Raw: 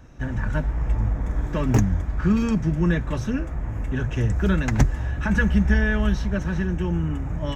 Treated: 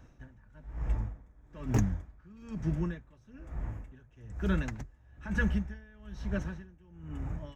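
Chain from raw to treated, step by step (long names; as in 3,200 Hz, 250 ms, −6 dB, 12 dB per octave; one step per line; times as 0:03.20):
tremolo with a sine in dB 1.1 Hz, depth 27 dB
level −7.5 dB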